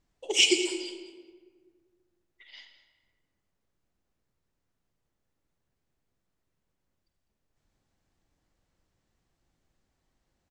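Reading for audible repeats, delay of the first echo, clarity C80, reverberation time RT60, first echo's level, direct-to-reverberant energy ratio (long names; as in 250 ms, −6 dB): 1, 202 ms, 8.5 dB, 1.6 s, −15.5 dB, 7.0 dB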